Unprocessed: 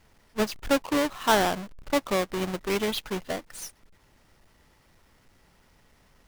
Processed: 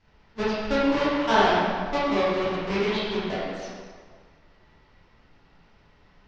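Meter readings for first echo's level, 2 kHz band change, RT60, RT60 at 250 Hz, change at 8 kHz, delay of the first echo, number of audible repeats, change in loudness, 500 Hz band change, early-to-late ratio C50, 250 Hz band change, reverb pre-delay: none, +3.0 dB, 1.8 s, 1.7 s, -11.0 dB, none, none, +2.5 dB, +3.0 dB, -3.0 dB, +3.0 dB, 15 ms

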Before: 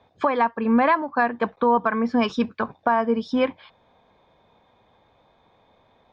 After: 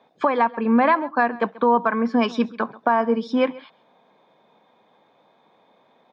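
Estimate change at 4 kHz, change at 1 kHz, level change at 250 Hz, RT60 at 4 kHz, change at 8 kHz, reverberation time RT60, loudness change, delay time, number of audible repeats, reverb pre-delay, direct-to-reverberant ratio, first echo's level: +0.5 dB, +1.5 dB, +1.0 dB, none, n/a, none, +1.0 dB, 0.135 s, 1, none, none, -20.5 dB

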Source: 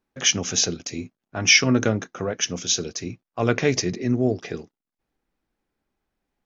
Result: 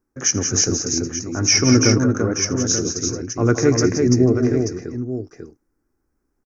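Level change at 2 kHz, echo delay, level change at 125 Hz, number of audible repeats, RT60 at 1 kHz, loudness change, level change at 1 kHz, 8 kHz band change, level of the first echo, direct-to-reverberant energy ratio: -3.0 dB, 82 ms, +8.0 dB, 4, none, +3.5 dB, +2.0 dB, n/a, -19.0 dB, none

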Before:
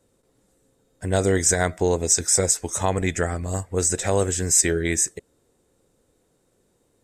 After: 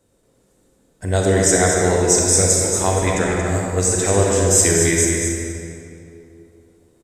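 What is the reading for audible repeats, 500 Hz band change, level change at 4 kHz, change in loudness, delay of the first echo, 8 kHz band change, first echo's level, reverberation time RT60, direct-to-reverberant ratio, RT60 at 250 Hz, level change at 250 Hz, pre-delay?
1, +6.0 dB, +5.0 dB, +5.0 dB, 0.23 s, +5.0 dB, -7.0 dB, 2.6 s, -2.5 dB, 3.0 s, +6.5 dB, 30 ms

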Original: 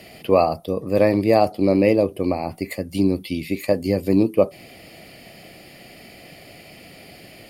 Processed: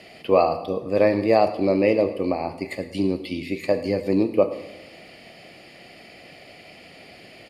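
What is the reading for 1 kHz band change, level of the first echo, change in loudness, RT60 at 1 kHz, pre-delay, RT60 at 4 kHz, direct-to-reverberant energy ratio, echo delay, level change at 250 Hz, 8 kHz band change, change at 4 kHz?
-1.0 dB, -17.0 dB, -2.0 dB, 0.95 s, 18 ms, 0.90 s, 9.5 dB, 0.108 s, -3.5 dB, n/a, -1.5 dB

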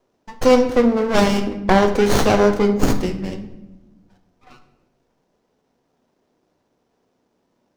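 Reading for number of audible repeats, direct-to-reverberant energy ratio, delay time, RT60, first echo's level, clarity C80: none, 7.0 dB, none, 0.95 s, none, 13.0 dB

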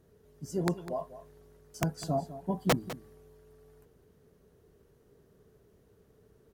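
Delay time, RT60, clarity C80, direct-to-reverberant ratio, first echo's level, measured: 0.202 s, none, none, none, -14.5 dB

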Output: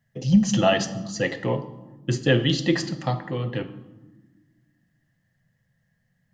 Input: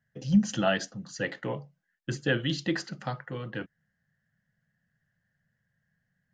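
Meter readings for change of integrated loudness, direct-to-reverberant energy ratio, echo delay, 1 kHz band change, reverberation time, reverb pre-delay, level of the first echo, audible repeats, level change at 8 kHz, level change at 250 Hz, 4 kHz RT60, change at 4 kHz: +6.5 dB, 9.0 dB, none, +7.0 dB, 1.2 s, 6 ms, none, none, +7.5 dB, +6.0 dB, 0.75 s, +7.5 dB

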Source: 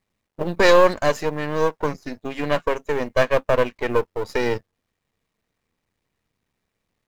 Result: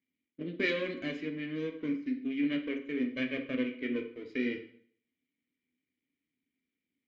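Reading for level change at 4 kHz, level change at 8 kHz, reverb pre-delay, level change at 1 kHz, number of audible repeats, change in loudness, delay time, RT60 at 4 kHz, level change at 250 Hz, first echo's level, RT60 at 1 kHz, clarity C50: -12.0 dB, n/a, 5 ms, -30.0 dB, none, -13.0 dB, none, 0.55 s, -3.5 dB, none, 0.55 s, 9.5 dB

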